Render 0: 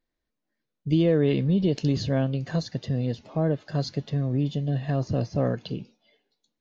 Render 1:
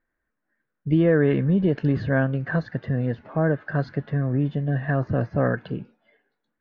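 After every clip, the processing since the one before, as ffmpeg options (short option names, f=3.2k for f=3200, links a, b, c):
-af "lowpass=f=1.6k:t=q:w=4,volume=2dB"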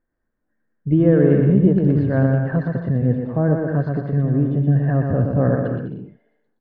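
-filter_complex "[0:a]tiltshelf=f=1.4k:g=8.5,asplit=2[a][b];[b]aecho=0:1:120|204|262.8|304|332.8:0.631|0.398|0.251|0.158|0.1[c];[a][c]amix=inputs=2:normalize=0,volume=-4.5dB"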